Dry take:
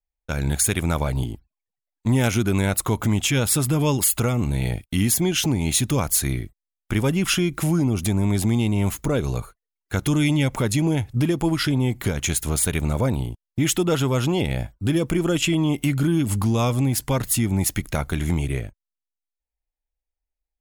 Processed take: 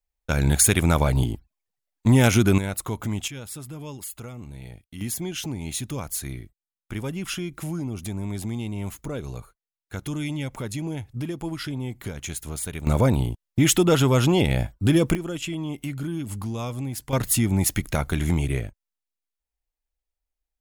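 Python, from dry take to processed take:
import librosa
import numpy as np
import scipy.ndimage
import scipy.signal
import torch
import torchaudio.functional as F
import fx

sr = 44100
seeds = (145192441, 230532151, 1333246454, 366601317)

y = fx.gain(x, sr, db=fx.steps((0.0, 3.0), (2.58, -7.0), (3.28, -16.5), (5.01, -9.5), (12.87, 2.5), (15.15, -9.5), (17.13, 0.0)))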